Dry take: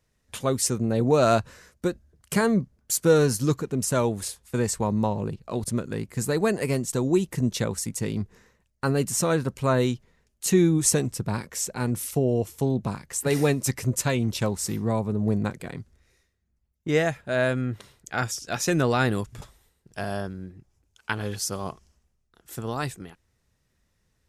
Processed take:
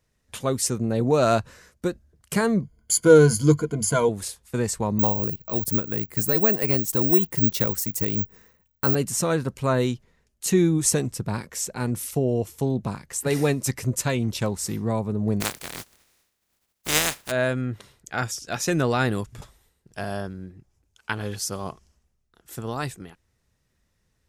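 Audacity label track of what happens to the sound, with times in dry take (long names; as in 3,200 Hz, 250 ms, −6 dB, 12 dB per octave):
2.620000	4.090000	EQ curve with evenly spaced ripples crests per octave 1.8, crest to trough 15 dB
4.990000	8.950000	bad sample-rate conversion rate divided by 2×, down none, up zero stuff
15.400000	17.300000	compressing power law on the bin magnitudes exponent 0.24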